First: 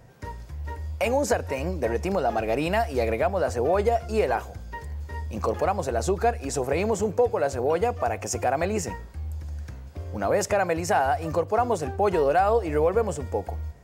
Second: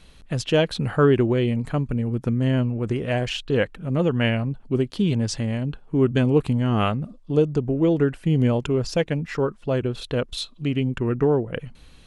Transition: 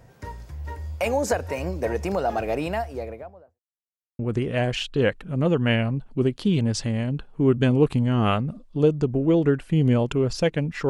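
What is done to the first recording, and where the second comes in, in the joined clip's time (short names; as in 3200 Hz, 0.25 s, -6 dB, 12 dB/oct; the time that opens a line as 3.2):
first
2.32–3.6 studio fade out
3.6–4.19 mute
4.19 switch to second from 2.73 s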